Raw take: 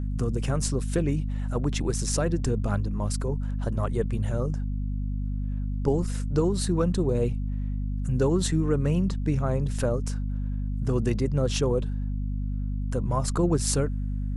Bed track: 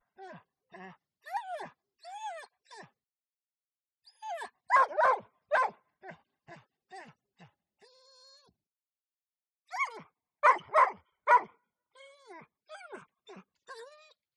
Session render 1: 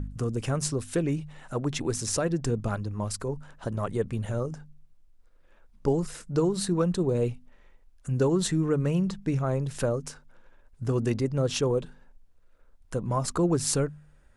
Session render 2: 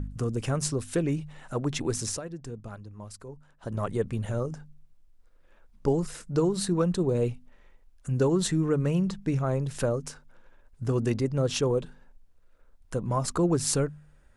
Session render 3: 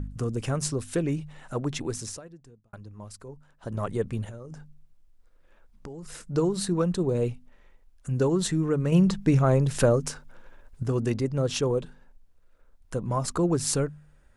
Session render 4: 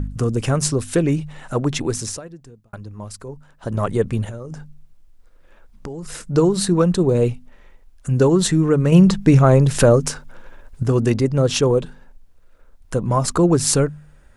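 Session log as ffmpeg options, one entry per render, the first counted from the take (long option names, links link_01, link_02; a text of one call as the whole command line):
ffmpeg -i in.wav -af "bandreject=frequency=50:width_type=h:width=4,bandreject=frequency=100:width_type=h:width=4,bandreject=frequency=150:width_type=h:width=4,bandreject=frequency=200:width_type=h:width=4,bandreject=frequency=250:width_type=h:width=4" out.wav
ffmpeg -i in.wav -filter_complex "[0:a]asplit=3[link_01][link_02][link_03];[link_01]atrim=end=2.21,asetpts=PTS-STARTPTS,afade=type=out:start_time=2.06:duration=0.15:silence=0.266073[link_04];[link_02]atrim=start=2.21:end=3.6,asetpts=PTS-STARTPTS,volume=-11.5dB[link_05];[link_03]atrim=start=3.6,asetpts=PTS-STARTPTS,afade=type=in:duration=0.15:silence=0.266073[link_06];[link_04][link_05][link_06]concat=n=3:v=0:a=1" out.wav
ffmpeg -i in.wav -filter_complex "[0:a]asettb=1/sr,asplit=3[link_01][link_02][link_03];[link_01]atrim=end=4.244[link_04];[link_02]atrim=start=4.24:end=6.13,asetpts=PTS-STARTPTS,afade=type=in:duration=0.004:curve=qsin,afade=type=out:start_time=1.886:duration=0.004:curve=qsin,acompressor=threshold=-36dB:ratio=16:attack=3.2:release=140:knee=1:detection=peak[link_05];[link_03]atrim=start=6.126[link_06];[link_04][link_05]acrossfade=duration=0.004:curve1=hsin:curve2=qsin[link_07];[link_07][link_06]acrossfade=duration=0.004:curve1=qsin:curve2=hsin,asettb=1/sr,asplit=3[link_08][link_09][link_10];[link_08]atrim=end=8.924[link_11];[link_09]atrim=start=8.92:end=10.83,asetpts=PTS-STARTPTS,afade=type=in:duration=0.004:curve=qsin,afade=type=out:start_time=1.906:duration=0.004:curve=qsin,acontrast=66[link_12];[link_10]atrim=start=10.826[link_13];[link_11][link_12]acrossfade=duration=0.004:curve1=hsin:curve2=qsin[link_14];[link_14][link_13]acrossfade=duration=0.004:curve1=qsin:curve2=hsin,asplit=2[link_15][link_16];[link_15]atrim=end=2.73,asetpts=PTS-STARTPTS,afade=type=out:start_time=1.6:duration=1.13[link_17];[link_16]atrim=start=2.73,asetpts=PTS-STARTPTS,afade=type=in:duration=0.004:curve=hsin[link_18];[link_17][link_18]concat=n=2:v=0:a=1" out.wav
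ffmpeg -i in.wav -af "volume=9dB,alimiter=limit=-2dB:level=0:latency=1" out.wav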